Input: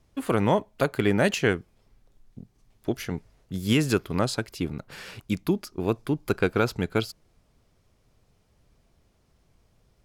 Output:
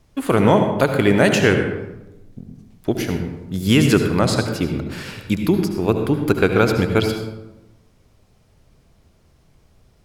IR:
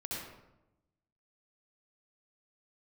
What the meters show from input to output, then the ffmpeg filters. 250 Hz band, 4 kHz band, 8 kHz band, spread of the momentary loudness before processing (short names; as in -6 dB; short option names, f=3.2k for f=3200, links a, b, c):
+9.0 dB, +7.5 dB, +7.5 dB, 13 LU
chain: -filter_complex "[0:a]asplit=2[a][b];[1:a]atrim=start_sample=2205,asetrate=40572,aresample=44100[c];[b][c]afir=irnorm=-1:irlink=0,volume=-3.5dB[d];[a][d]amix=inputs=2:normalize=0,volume=4dB"